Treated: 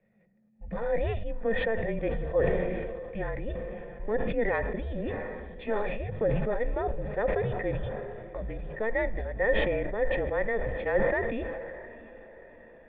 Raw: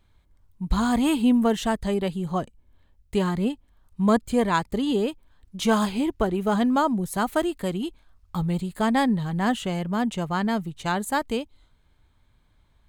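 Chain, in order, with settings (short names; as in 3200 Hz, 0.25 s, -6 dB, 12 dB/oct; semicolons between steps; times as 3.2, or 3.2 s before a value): frequency shift -220 Hz; in parallel at +0.5 dB: negative-ratio compressor -24 dBFS; on the sum: formant shift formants +3 st; vocal tract filter e; notches 50/100/150 Hz; diffused feedback echo 0.688 s, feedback 53%, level -16 dB; on a send at -18 dB: reverb RT60 0.75 s, pre-delay 3 ms; on the sum: sustainer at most 26 dB/s; gain +3 dB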